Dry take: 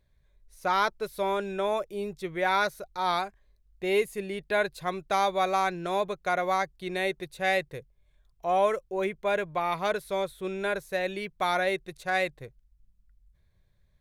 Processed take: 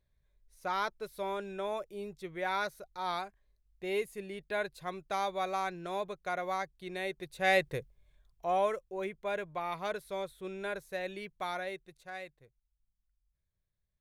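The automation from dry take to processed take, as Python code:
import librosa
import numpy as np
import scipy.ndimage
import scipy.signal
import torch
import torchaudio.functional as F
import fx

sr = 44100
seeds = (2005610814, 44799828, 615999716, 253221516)

y = fx.gain(x, sr, db=fx.line((7.08, -8.0), (7.74, 3.0), (8.87, -8.0), (11.27, -8.0), (12.37, -18.5)))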